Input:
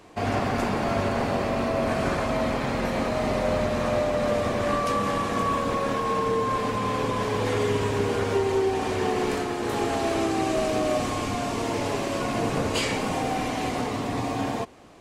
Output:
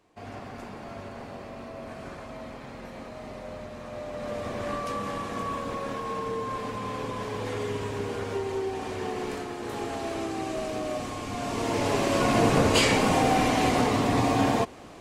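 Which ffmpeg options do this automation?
-af "volume=4.5dB,afade=t=in:st=3.89:d=0.71:silence=0.398107,afade=t=in:st=11.25:d=1.07:silence=0.266073"

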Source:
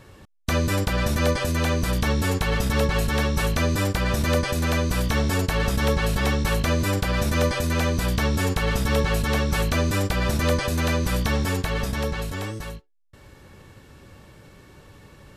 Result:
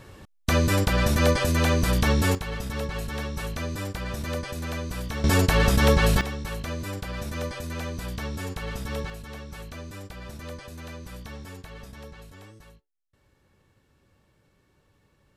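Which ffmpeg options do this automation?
-af "asetnsamples=n=441:p=0,asendcmd='2.35 volume volume -9dB;5.24 volume volume 3dB;6.21 volume volume -10dB;9.1 volume volume -17dB',volume=1dB"

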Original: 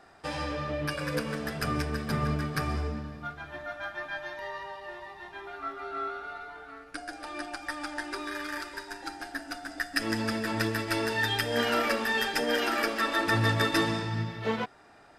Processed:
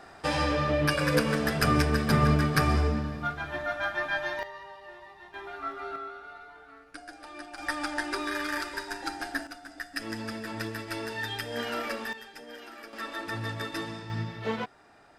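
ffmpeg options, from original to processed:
-af "asetnsamples=n=441:p=0,asendcmd='4.43 volume volume -5dB;5.34 volume volume 1dB;5.96 volume volume -5.5dB;7.58 volume volume 4dB;9.47 volume volume -6dB;12.13 volume volume -17.5dB;12.93 volume volume -9dB;14.1 volume volume -1.5dB',volume=6.5dB"

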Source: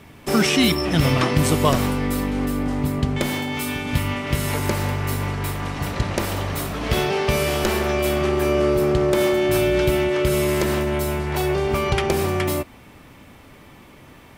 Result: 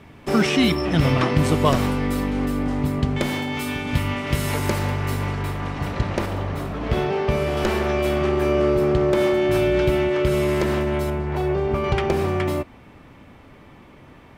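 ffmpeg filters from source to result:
-af "asetnsamples=n=441:p=0,asendcmd='1.66 lowpass f 5200;4.18 lowpass f 10000;4.79 lowpass f 5100;5.42 lowpass f 2600;6.26 lowpass f 1300;7.57 lowpass f 2900;11.1 lowpass f 1100;11.84 lowpass f 2200',lowpass=f=3k:p=1"

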